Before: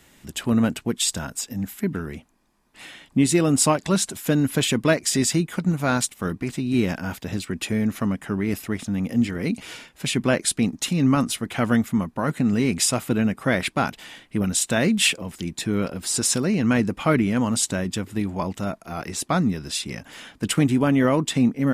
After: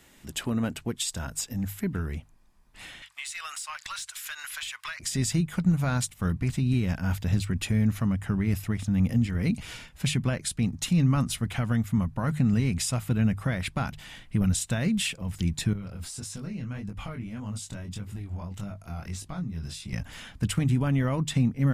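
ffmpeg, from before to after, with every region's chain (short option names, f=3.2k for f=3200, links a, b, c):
-filter_complex "[0:a]asettb=1/sr,asplit=3[a][b][c];[a]atrim=end=3.024[d];[b]atrim=start=3.02:end=5,asetpts=PTS-STARTPTS,afade=t=in:d=0.004:c=qsin,afade=t=out:st=1.976:d=0.004:c=qsin,highpass=f=1.2k:w=0.5412,highpass=f=1.2k:w=1.3066,acompressor=threshold=-36dB:ratio=8:attack=3.2:release=140:knee=1:detection=peak,asplit=2[e][f];[f]highpass=f=720:p=1,volume=13dB,asoftclip=type=tanh:threshold=-19dB[g];[e][g]amix=inputs=2:normalize=0,lowpass=f=6.8k:p=1,volume=-6dB[h];[c]atrim=start=4.996[i];[d][h]acrossfade=d=0.004:c1=hsin:c2=qsin[j];[j][i]acrossfade=d=0.004:c1=qsin:c2=hsin,asettb=1/sr,asplit=3[k][l][m];[k]atrim=end=15.734[n];[l]atrim=start=15.73:end=19.93,asetpts=PTS-STARTPTS,afade=t=in:d=0.004:c=qsin,afade=t=out:st=4.196:d=0.004:c=qsin,bandreject=f=1.8k:w=23,acompressor=threshold=-32dB:ratio=4:attack=3.2:release=140:knee=1:detection=peak,flanger=delay=19.5:depth=5.3:speed=1.7[o];[m]atrim=start=19.926[p];[n][o]acrossfade=d=0.004:c1=hsin:c2=qsin[q];[q][p]acrossfade=d=0.004:c1=qsin:c2=hsin,alimiter=limit=-16dB:level=0:latency=1:release=337,asubboost=boost=8.5:cutoff=110,bandreject=f=50:t=h:w=6,bandreject=f=100:t=h:w=6,bandreject=f=150:t=h:w=6,volume=-2.5dB"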